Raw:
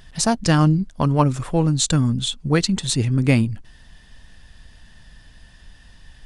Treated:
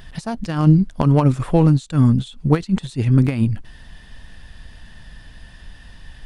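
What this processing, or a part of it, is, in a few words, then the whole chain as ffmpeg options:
de-esser from a sidechain: -filter_complex "[0:a]equalizer=f=6.8k:t=o:w=1.2:g=-6,asplit=2[a][b];[b]highpass=4.3k,apad=whole_len=275662[c];[a][c]sidechaincompress=threshold=-49dB:ratio=5:attack=3.9:release=51,volume=6dB"

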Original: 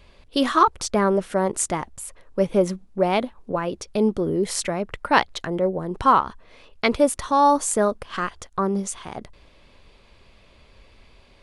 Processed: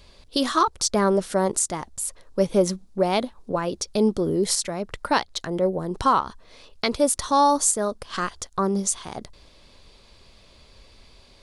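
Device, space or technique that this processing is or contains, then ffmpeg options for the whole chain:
over-bright horn tweeter: -af "highshelf=f=3.4k:t=q:w=1.5:g=6.5,alimiter=limit=-9dB:level=0:latency=1:release=454"

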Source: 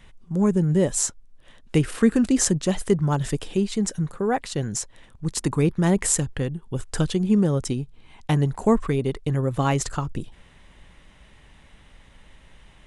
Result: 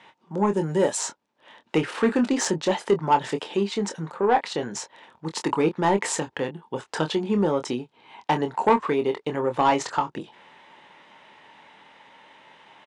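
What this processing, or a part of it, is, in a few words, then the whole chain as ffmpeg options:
intercom: -filter_complex "[0:a]highpass=82,asplit=3[a][b][c];[a]afade=t=out:st=0.52:d=0.02[d];[b]aemphasis=mode=production:type=50fm,afade=t=in:st=0.52:d=0.02,afade=t=out:st=0.96:d=0.02[e];[c]afade=t=in:st=0.96:d=0.02[f];[d][e][f]amix=inputs=3:normalize=0,highpass=340,lowpass=4.2k,equalizer=f=900:t=o:w=0.25:g=11,asoftclip=type=tanh:threshold=-15.5dB,asplit=2[g][h];[h]adelay=25,volume=-8dB[i];[g][i]amix=inputs=2:normalize=0,volume=4dB"

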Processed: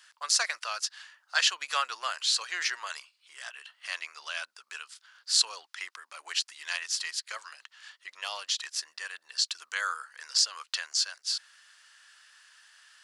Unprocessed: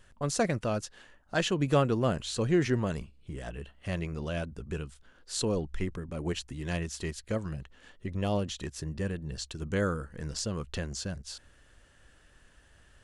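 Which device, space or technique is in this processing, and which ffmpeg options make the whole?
headphones lying on a table: -af "highpass=f=1.1k:w=0.5412,highpass=f=1.1k:w=1.3066,equalizer=f=4.8k:t=o:w=0.6:g=9,volume=6dB"

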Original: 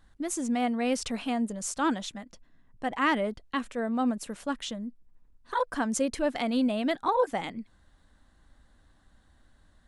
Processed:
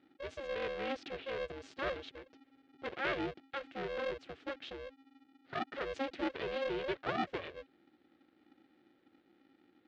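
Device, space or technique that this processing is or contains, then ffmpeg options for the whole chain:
ring modulator pedal into a guitar cabinet: -af "aeval=exprs='val(0)*sgn(sin(2*PI*270*n/s))':c=same,highpass=100,equalizer=f=220:t=q:w=4:g=-6,equalizer=f=360:t=q:w=4:g=8,equalizer=f=980:t=q:w=4:g=-10,lowpass=f=3.8k:w=0.5412,lowpass=f=3.8k:w=1.3066,volume=-8.5dB"

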